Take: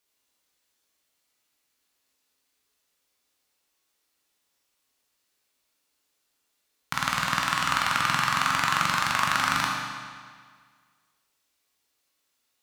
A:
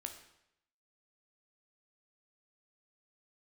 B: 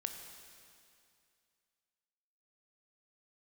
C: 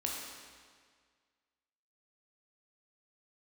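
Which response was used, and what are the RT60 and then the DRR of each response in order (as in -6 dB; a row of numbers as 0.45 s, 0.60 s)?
C; 0.80 s, 2.4 s, 1.8 s; 5.0 dB, 5.0 dB, -2.0 dB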